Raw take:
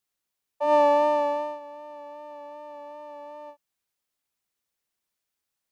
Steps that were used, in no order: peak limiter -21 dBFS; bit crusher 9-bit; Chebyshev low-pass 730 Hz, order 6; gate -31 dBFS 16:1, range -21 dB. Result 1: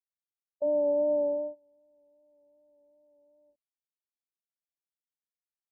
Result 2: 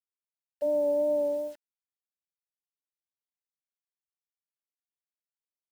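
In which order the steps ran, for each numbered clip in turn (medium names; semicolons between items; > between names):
bit crusher > gate > Chebyshev low-pass > peak limiter; gate > Chebyshev low-pass > peak limiter > bit crusher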